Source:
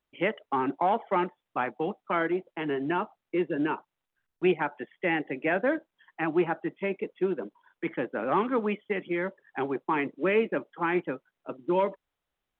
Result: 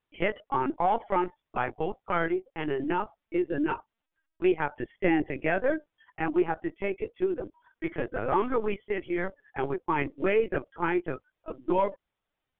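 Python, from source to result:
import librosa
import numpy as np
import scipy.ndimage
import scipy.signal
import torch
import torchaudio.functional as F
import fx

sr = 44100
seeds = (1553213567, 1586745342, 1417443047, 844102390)

y = fx.low_shelf(x, sr, hz=320.0, db=10.5, at=(4.81, 5.26))
y = fx.lpc_vocoder(y, sr, seeds[0], excitation='pitch_kept', order=16)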